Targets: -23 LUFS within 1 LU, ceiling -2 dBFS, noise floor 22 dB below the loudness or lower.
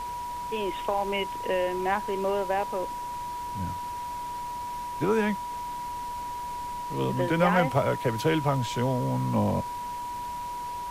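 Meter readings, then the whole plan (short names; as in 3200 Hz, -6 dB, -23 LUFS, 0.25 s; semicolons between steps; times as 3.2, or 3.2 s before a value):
steady tone 970 Hz; tone level -32 dBFS; noise floor -35 dBFS; noise floor target -51 dBFS; loudness -29.0 LUFS; peak -11.0 dBFS; loudness target -23.0 LUFS
-> notch 970 Hz, Q 30; denoiser 16 dB, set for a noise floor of -35 dBFS; gain +6 dB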